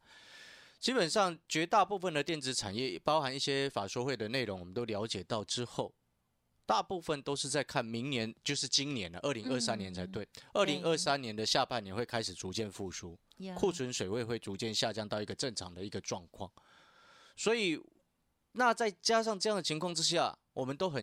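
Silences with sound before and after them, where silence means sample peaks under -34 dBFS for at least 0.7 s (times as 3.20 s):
5.86–6.69 s
16.45–17.40 s
17.75–18.58 s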